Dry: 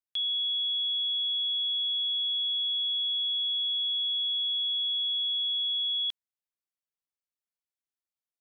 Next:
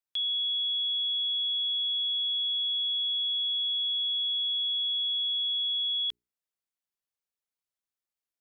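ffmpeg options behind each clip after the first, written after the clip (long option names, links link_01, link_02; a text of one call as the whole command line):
ffmpeg -i in.wav -af "bandreject=frequency=60:width_type=h:width=6,bandreject=frequency=120:width_type=h:width=6,bandreject=frequency=180:width_type=h:width=6,bandreject=frequency=240:width_type=h:width=6,bandreject=frequency=300:width_type=h:width=6,bandreject=frequency=360:width_type=h:width=6,bandreject=frequency=420:width_type=h:width=6" out.wav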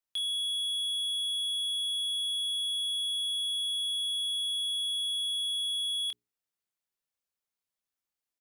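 ffmpeg -i in.wav -filter_complex "[0:a]volume=29.5dB,asoftclip=hard,volume=-29.5dB,asplit=2[link_01][link_02];[link_02]adelay=26,volume=-7dB[link_03];[link_01][link_03]amix=inputs=2:normalize=0" out.wav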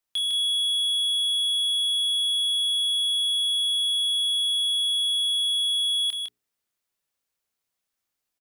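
ffmpeg -i in.wav -af "aecho=1:1:155:0.596,volume=6dB" out.wav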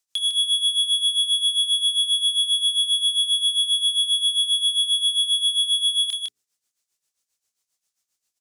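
ffmpeg -i in.wav -af "equalizer=frequency=6800:width_type=o:width=1.7:gain=13.5,tremolo=f=7.5:d=0.73" out.wav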